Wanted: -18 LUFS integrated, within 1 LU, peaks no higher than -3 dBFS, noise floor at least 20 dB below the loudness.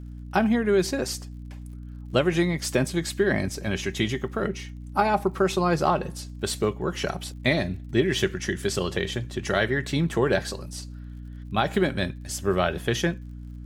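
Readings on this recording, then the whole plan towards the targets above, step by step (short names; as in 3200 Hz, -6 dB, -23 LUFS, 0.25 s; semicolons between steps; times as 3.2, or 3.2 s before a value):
ticks 53/s; hum 60 Hz; harmonics up to 300 Hz; hum level -36 dBFS; loudness -26.0 LUFS; peak -7.0 dBFS; loudness target -18.0 LUFS
-> de-click; notches 60/120/180/240/300 Hz; gain +8 dB; limiter -3 dBFS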